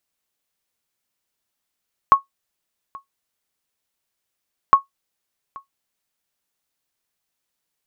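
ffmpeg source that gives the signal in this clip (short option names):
-f lavfi -i "aevalsrc='0.794*(sin(2*PI*1100*mod(t,2.61))*exp(-6.91*mod(t,2.61)/0.13)+0.0562*sin(2*PI*1100*max(mod(t,2.61)-0.83,0))*exp(-6.91*max(mod(t,2.61)-0.83,0)/0.13))':d=5.22:s=44100"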